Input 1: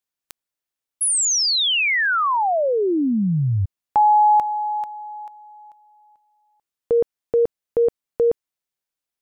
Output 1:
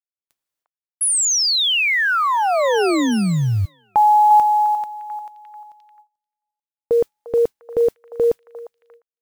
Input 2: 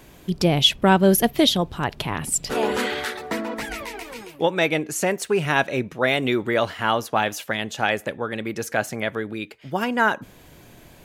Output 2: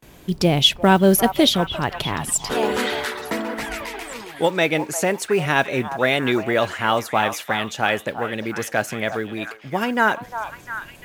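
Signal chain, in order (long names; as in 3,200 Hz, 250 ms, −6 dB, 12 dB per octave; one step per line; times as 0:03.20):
echo through a band-pass that steps 351 ms, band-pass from 910 Hz, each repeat 0.7 octaves, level −7 dB
noise that follows the level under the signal 33 dB
noise gate with hold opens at −38 dBFS, closes at −45 dBFS, hold 272 ms, range −27 dB
level +1.5 dB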